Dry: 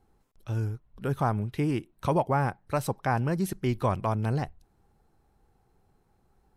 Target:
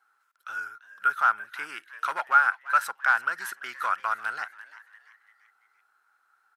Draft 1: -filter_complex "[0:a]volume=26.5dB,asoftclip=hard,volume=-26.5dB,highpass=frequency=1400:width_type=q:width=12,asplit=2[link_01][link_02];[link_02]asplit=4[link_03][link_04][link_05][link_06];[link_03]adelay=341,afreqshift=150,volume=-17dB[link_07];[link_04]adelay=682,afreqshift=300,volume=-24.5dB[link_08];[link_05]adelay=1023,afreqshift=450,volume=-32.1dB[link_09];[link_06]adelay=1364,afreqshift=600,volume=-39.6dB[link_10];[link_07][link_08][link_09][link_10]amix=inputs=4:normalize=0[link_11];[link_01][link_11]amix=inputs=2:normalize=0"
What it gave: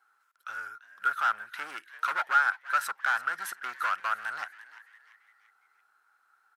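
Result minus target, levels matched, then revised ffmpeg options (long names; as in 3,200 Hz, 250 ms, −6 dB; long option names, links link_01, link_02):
gain into a clipping stage and back: distortion +14 dB
-filter_complex "[0:a]volume=18.5dB,asoftclip=hard,volume=-18.5dB,highpass=frequency=1400:width_type=q:width=12,asplit=2[link_01][link_02];[link_02]asplit=4[link_03][link_04][link_05][link_06];[link_03]adelay=341,afreqshift=150,volume=-17dB[link_07];[link_04]adelay=682,afreqshift=300,volume=-24.5dB[link_08];[link_05]adelay=1023,afreqshift=450,volume=-32.1dB[link_09];[link_06]adelay=1364,afreqshift=600,volume=-39.6dB[link_10];[link_07][link_08][link_09][link_10]amix=inputs=4:normalize=0[link_11];[link_01][link_11]amix=inputs=2:normalize=0"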